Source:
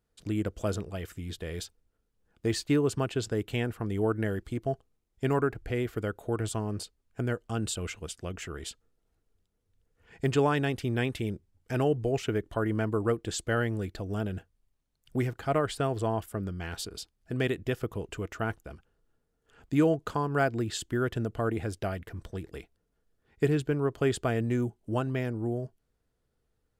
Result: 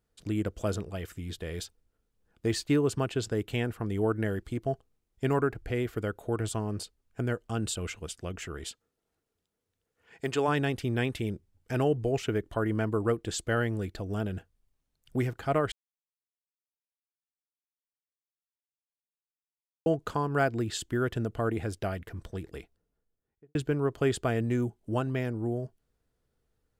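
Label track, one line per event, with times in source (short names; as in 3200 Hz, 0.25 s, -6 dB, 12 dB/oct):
8.660000	10.470000	HPF 190 Hz -> 420 Hz 6 dB/oct
15.720000	19.860000	mute
22.510000	23.550000	studio fade out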